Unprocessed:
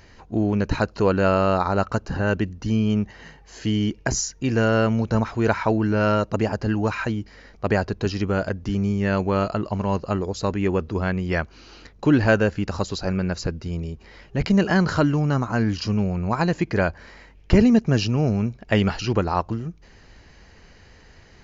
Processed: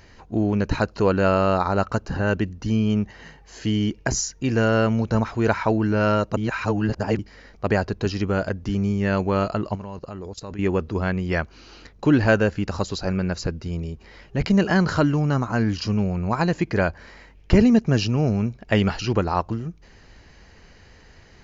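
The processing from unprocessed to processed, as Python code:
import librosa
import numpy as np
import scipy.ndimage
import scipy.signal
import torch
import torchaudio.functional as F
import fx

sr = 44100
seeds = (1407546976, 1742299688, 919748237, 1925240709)

y = fx.level_steps(x, sr, step_db=17, at=(9.75, 10.59))
y = fx.edit(y, sr, fx.reverse_span(start_s=6.37, length_s=0.82), tone=tone)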